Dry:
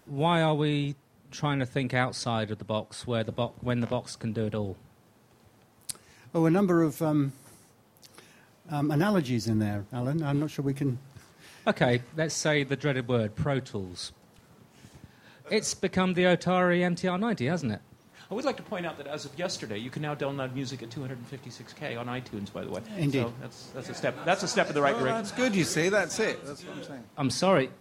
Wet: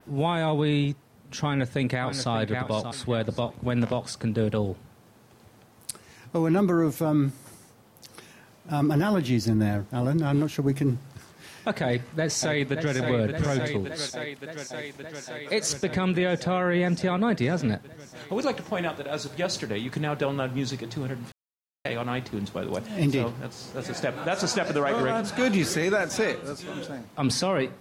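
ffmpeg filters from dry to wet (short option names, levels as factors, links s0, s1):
-filter_complex "[0:a]asplit=2[s0][s1];[s1]afade=t=in:st=1.44:d=0.01,afade=t=out:st=2.33:d=0.01,aecho=0:1:580|1160|1740:0.298538|0.0895615|0.0268684[s2];[s0][s2]amix=inputs=2:normalize=0,asplit=2[s3][s4];[s4]afade=t=in:st=11.85:d=0.01,afade=t=out:st=12.95:d=0.01,aecho=0:1:570|1140|1710|2280|2850|3420|3990|4560|5130|5700|6270|6840:0.334965|0.267972|0.214378|0.171502|0.137202|0.109761|0.0878092|0.0702473|0.0561979|0.0449583|0.0359666|0.0287733[s5];[s3][s5]amix=inputs=2:normalize=0,asettb=1/sr,asplit=3[s6][s7][s8];[s6]atrim=end=13.864[s9];[s7]atrim=start=13.86:end=15.7,asetpts=PTS-STARTPTS,afade=t=in:d=0.004:c=qsin,afade=t=out:st=1.836:d=0.004:c=qsin,highpass=f=310:p=1[s10];[s8]atrim=start=15.696[s11];[s9][s10]acrossfade=d=0.004:c1=hsin:c2=qsin[s12];[s12][s11]acrossfade=d=0.004:c1=qsin:c2=hsin,asplit=3[s13][s14][s15];[s13]atrim=end=21.32,asetpts=PTS-STARTPTS,afade=t=out:st=21.316:d=0.004:c=hsin[s16];[s14]atrim=start=21.32:end=21.85,asetpts=PTS-STARTPTS,volume=0[s17];[s15]atrim=start=21.85,asetpts=PTS-STARTPTS,afade=t=in:d=0.004:c=hsin[s18];[s16][s17][s18]concat=n=3:v=0:a=1,adynamicequalizer=threshold=0.00355:dfrequency=7300:dqfactor=0.82:tfrequency=7300:tqfactor=0.82:attack=5:release=100:ratio=0.375:range=2.5:mode=cutabove:tftype=bell,alimiter=limit=0.106:level=0:latency=1:release=53,volume=1.78"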